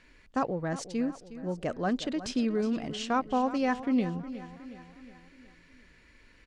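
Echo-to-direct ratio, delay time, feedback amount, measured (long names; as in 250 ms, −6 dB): −12.5 dB, 363 ms, 52%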